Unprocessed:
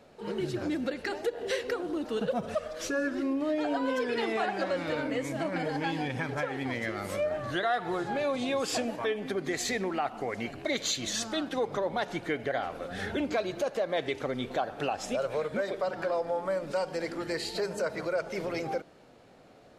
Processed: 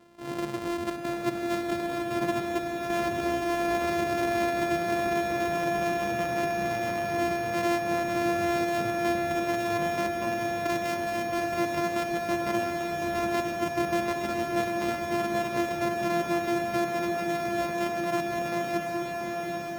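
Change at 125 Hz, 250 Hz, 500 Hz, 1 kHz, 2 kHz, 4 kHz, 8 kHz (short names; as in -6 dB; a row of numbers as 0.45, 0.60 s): +2.5, +4.0, +2.5, +6.0, +3.5, -1.5, -1.5 dB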